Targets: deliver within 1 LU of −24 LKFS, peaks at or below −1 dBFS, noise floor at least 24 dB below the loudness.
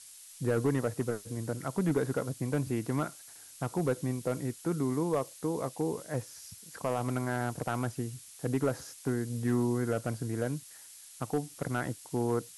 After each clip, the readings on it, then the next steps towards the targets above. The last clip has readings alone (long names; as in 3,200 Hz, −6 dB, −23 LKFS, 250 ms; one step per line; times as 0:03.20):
share of clipped samples 0.5%; peaks flattened at −21.0 dBFS; background noise floor −52 dBFS; target noise floor −57 dBFS; integrated loudness −33.0 LKFS; sample peak −21.0 dBFS; target loudness −24.0 LKFS
→ clipped peaks rebuilt −21 dBFS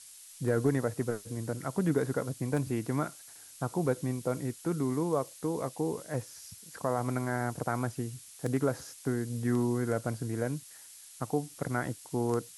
share of clipped samples 0.0%; background noise floor −52 dBFS; target noise floor −57 dBFS
→ noise reduction from a noise print 6 dB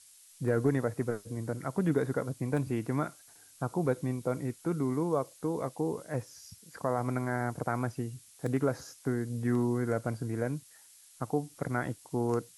background noise floor −58 dBFS; integrated loudness −33.0 LKFS; sample peak −15.0 dBFS; target loudness −24.0 LKFS
→ level +9 dB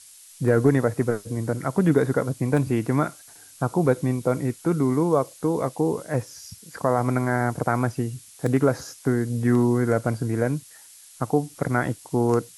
integrated loudness −24.0 LKFS; sample peak −6.0 dBFS; background noise floor −48 dBFS